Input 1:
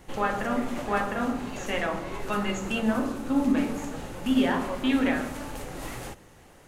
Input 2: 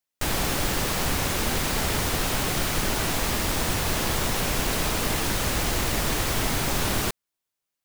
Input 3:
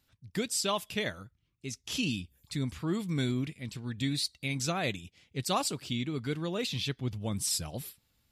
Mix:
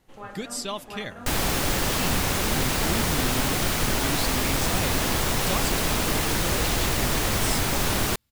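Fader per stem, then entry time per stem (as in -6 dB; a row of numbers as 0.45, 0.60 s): -13.5, +1.0, -1.5 dB; 0.00, 1.05, 0.00 s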